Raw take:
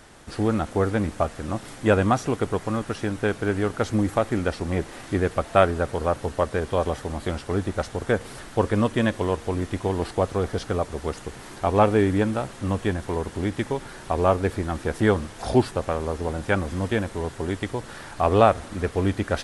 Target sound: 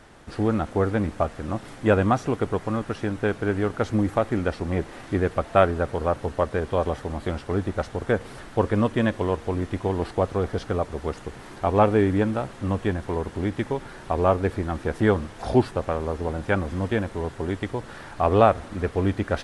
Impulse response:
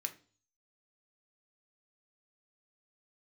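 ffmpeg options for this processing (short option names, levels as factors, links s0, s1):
-af "highshelf=f=4500:g=-9.5"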